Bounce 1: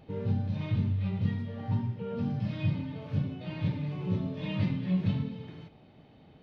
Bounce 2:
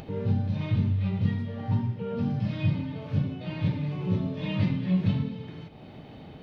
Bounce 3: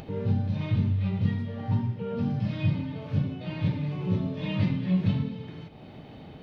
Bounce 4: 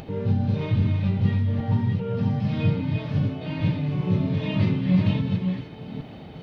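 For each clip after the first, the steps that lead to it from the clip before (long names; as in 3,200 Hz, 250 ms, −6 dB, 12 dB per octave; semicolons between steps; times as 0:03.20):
upward compression, threshold −39 dBFS; level +3.5 dB
no processing that can be heard
delay that plays each chunk backwards 401 ms, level −4 dB; level +3 dB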